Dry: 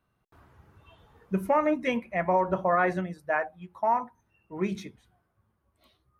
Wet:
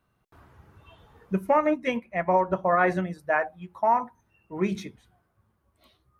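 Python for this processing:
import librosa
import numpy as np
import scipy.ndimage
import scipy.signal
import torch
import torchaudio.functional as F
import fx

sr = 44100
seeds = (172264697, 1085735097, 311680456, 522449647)

y = fx.upward_expand(x, sr, threshold_db=-38.0, expansion=1.5, at=(1.33, 2.81))
y = y * librosa.db_to_amplitude(3.0)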